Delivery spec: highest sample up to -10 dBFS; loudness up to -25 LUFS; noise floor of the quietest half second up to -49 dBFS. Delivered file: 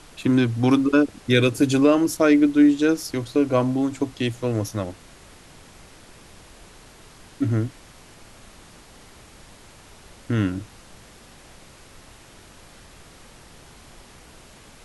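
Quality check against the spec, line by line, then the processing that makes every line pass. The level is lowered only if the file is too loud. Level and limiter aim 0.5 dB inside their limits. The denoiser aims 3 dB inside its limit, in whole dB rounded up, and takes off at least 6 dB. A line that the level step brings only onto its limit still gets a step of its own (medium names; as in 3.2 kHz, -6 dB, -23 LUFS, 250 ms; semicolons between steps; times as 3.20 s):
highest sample -5.5 dBFS: fail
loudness -21.0 LUFS: fail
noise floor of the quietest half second -47 dBFS: fail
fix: trim -4.5 dB; peak limiter -10.5 dBFS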